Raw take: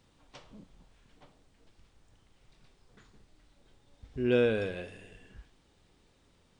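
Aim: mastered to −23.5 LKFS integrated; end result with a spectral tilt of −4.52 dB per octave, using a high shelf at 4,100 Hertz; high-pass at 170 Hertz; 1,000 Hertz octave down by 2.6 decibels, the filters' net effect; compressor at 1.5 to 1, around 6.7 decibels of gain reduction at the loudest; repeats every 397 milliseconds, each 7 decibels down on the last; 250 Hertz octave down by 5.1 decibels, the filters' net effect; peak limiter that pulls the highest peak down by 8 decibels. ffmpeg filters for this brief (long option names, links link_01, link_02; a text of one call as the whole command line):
ffmpeg -i in.wav -af "highpass=170,equalizer=frequency=250:width_type=o:gain=-5.5,equalizer=frequency=1000:width_type=o:gain=-3,highshelf=frequency=4100:gain=-7.5,acompressor=threshold=-42dB:ratio=1.5,alimiter=level_in=7.5dB:limit=-24dB:level=0:latency=1,volume=-7.5dB,aecho=1:1:397|794|1191|1588|1985:0.447|0.201|0.0905|0.0407|0.0183,volume=21dB" out.wav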